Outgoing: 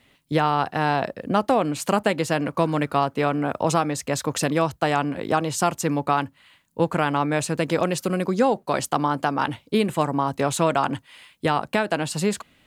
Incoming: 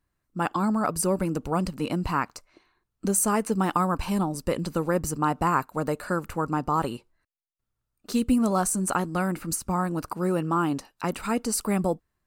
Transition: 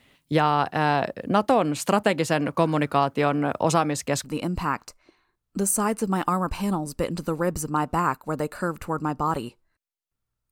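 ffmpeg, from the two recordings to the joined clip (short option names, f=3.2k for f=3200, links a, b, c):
-filter_complex "[0:a]apad=whole_dur=10.51,atrim=end=10.51,atrim=end=4.242[a];[1:a]atrim=start=1.718:end=7.99[b];[a][b]acrossfade=d=0.004:c1=hsin:c2=hsin"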